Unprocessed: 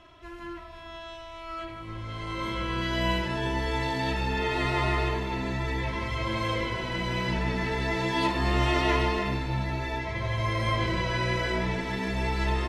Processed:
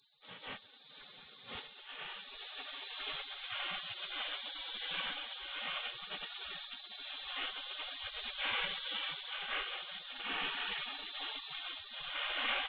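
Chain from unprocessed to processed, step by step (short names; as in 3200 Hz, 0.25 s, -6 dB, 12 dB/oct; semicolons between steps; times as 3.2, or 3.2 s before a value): CVSD 16 kbps; spectral gate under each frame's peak -30 dB weak; low shelf 170 Hz +4.5 dB; gain +12.5 dB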